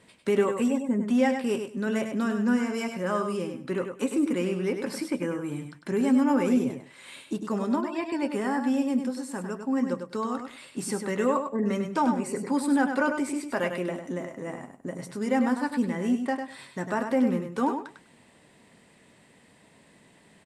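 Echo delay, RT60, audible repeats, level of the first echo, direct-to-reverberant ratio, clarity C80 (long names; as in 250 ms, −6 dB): 100 ms, no reverb audible, 2, −7.0 dB, no reverb audible, no reverb audible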